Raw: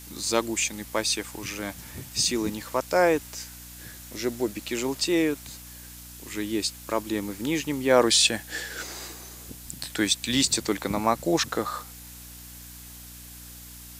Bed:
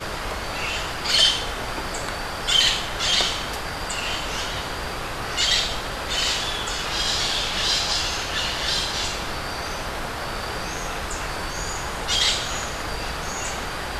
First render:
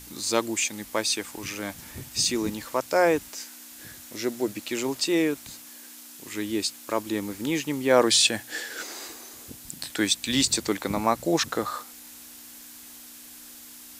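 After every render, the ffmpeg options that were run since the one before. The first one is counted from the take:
-af "bandreject=f=60:t=h:w=4,bandreject=f=120:t=h:w=4,bandreject=f=180:t=h:w=4"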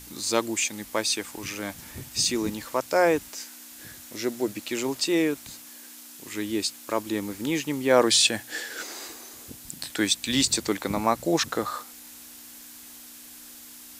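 -af anull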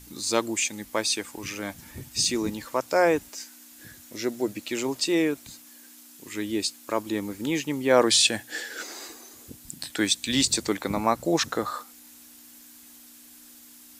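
-af "afftdn=nr=6:nf=-46"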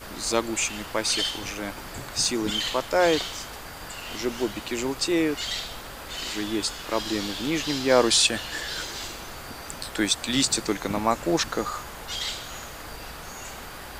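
-filter_complex "[1:a]volume=0.299[s0];[0:a][s0]amix=inputs=2:normalize=0"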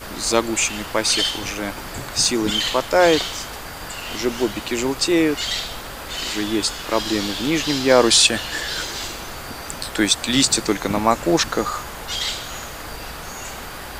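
-af "volume=2,alimiter=limit=0.891:level=0:latency=1"

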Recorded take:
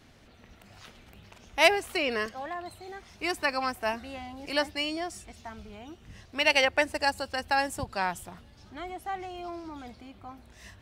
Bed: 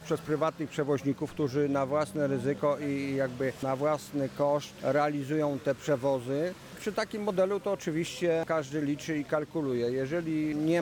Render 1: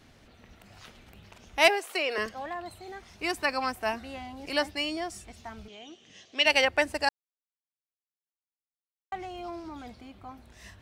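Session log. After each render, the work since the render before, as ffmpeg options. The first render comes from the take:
-filter_complex "[0:a]asettb=1/sr,asplit=3[s0][s1][s2];[s0]atrim=end=1.684[s3];[s1]atrim=start=1.68:end=2.18,asetpts=PTS-STARTPTS,afade=t=in:d=0.004:c=qsin,afade=t=out:st=0.496:d=0.004:c=qsin,highpass=f=360:w=0.5412,highpass=f=360:w=1.3066[s4];[s2]atrim=start=2.176[s5];[s3][s4]acrossfade=d=0.004:c1=hsin:c2=qsin[s6];[s6][s5]acrossfade=d=0.004:c1=qsin:c2=hsin,asettb=1/sr,asplit=3[s7][s8][s9];[s7]atrim=end=5.684[s10];[s8]atrim=start=5.68:end=6.46,asetpts=PTS-STARTPTS,afade=t=in:d=0.004:c=qsin,afade=t=out:st=0.776:d=0.004:c=qsin,highpass=300,equalizer=f=940:t=q:w=4:g=-9,equalizer=f=1400:t=q:w=4:g=-8,equalizer=f=3200:t=q:w=4:g=10,equalizer=f=6400:t=q:w=4:g=8,lowpass=f=7500:w=0.5412,lowpass=f=7500:w=1.3066[s11];[s9]atrim=start=6.456[s12];[s10][s11]acrossfade=d=0.004:c1=hsin:c2=qsin[s13];[s13][s12]acrossfade=d=0.004:c1=qsin:c2=hsin,asplit=3[s14][s15][s16];[s14]atrim=end=7.09,asetpts=PTS-STARTPTS,afade=t=out:st=7.086:d=0.004:c=hsin[s17];[s15]atrim=start=7.09:end=9.12,asetpts=PTS-STARTPTS,volume=0[s18];[s16]atrim=start=9.12,asetpts=PTS-STARTPTS,afade=t=in:d=0.004:c=hsin[s19];[s17][s18][s19]concat=n=3:v=0:a=1"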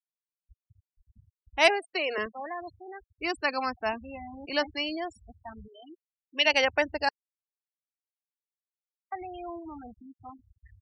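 -af "afftfilt=real='re*gte(hypot(re,im),0.0224)':imag='im*gte(hypot(re,im),0.0224)':win_size=1024:overlap=0.75,adynamicequalizer=threshold=0.0178:dfrequency=1800:dqfactor=0.7:tfrequency=1800:tqfactor=0.7:attack=5:release=100:ratio=0.375:range=2:mode=cutabove:tftype=highshelf"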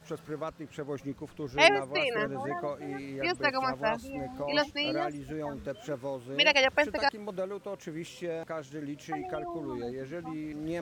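-filter_complex "[1:a]volume=0.398[s0];[0:a][s0]amix=inputs=2:normalize=0"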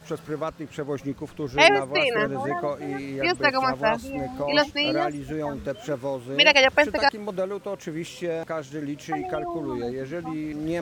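-af "volume=2.24,alimiter=limit=0.708:level=0:latency=1"

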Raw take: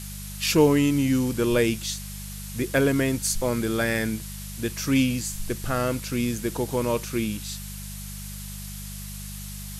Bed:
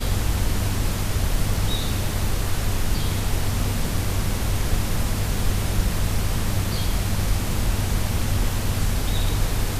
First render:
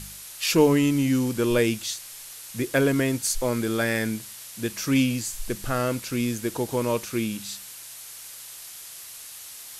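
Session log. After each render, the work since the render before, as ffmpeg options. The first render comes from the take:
-af "bandreject=f=50:t=h:w=4,bandreject=f=100:t=h:w=4,bandreject=f=150:t=h:w=4,bandreject=f=200:t=h:w=4"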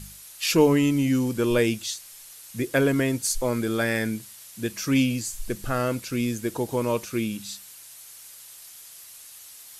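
-af "afftdn=nr=6:nf=-42"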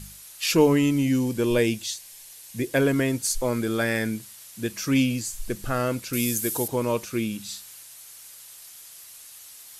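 -filter_complex "[0:a]asettb=1/sr,asplit=3[s0][s1][s2];[s0]atrim=end=1.044[s3];[s1]atrim=start=1.04:end=2.8,asetpts=PTS-STARTPTS,afade=t=in:d=0.004:c=qsin,afade=t=out:st=1.756:d=0.004:c=qsin,equalizer=f=1300:t=o:w=0.25:g=-9[s4];[s2]atrim=start=2.796[s5];[s3][s4]acrossfade=d=0.004:c1=hsin:c2=qsin[s6];[s6][s5]acrossfade=d=0.004:c1=qsin:c2=hsin,asettb=1/sr,asplit=3[s7][s8][s9];[s7]atrim=end=6.134[s10];[s8]atrim=start=6.13:end=6.68,asetpts=PTS-STARTPTS,afade=t=in:d=0.004:c=qsin,afade=t=out:st=0.546:d=0.004:c=qsin,aemphasis=mode=production:type=75fm[s11];[s9]atrim=start=6.676[s12];[s10][s11]acrossfade=d=0.004:c1=hsin:c2=qsin[s13];[s13][s12]acrossfade=d=0.004:c1=qsin:c2=hsin,asettb=1/sr,asplit=3[s14][s15][s16];[s14]atrim=end=7.434[s17];[s15]atrim=start=7.43:end=7.83,asetpts=PTS-STARTPTS,afade=t=in:d=0.004:c=qsin,afade=t=out:st=0.396:d=0.004:c=qsin,asplit=2[s18][s19];[s19]adelay=43,volume=0.501[s20];[s18][s20]amix=inputs=2:normalize=0,atrim=end_sample=17640[s21];[s16]atrim=start=7.826[s22];[s17][s21]acrossfade=d=0.004:c1=hsin:c2=qsin[s23];[s23][s22]acrossfade=d=0.004:c1=qsin:c2=hsin"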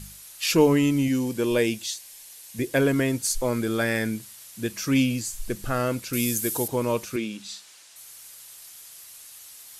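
-filter_complex "[0:a]asettb=1/sr,asplit=3[s0][s1][s2];[s0]atrim=end=1.084[s3];[s1]atrim=start=1.08:end=2.59,asetpts=PTS-STARTPTS,afade=t=in:d=0.004:c=qsin,afade=t=out:st=1.506:d=0.004:c=qsin,lowshelf=f=110:g=-10[s4];[s2]atrim=start=2.586[s5];[s3][s4]acrossfade=d=0.004:c1=hsin:c2=qsin[s6];[s6][s5]acrossfade=d=0.004:c1=qsin:c2=hsin,asettb=1/sr,asplit=3[s7][s8][s9];[s7]atrim=end=7.164[s10];[s8]atrim=start=7.16:end=7.96,asetpts=PTS-STARTPTS,afade=t=in:d=0.004:c=qsin,afade=t=out:st=0.796:d=0.004:c=qsin,highpass=240,lowpass=6800[s11];[s9]atrim=start=7.956[s12];[s10][s11]acrossfade=d=0.004:c1=hsin:c2=qsin[s13];[s13][s12]acrossfade=d=0.004:c1=qsin:c2=hsin"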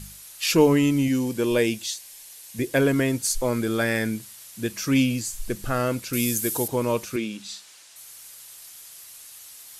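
-af "volume=1.12"

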